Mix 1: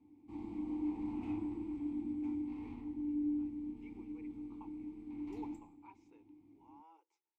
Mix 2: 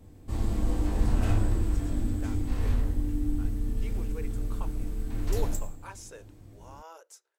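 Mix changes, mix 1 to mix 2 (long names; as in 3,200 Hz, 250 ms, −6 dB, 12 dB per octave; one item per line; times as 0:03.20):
speech: remove high-frequency loss of the air 92 metres
master: remove formant filter u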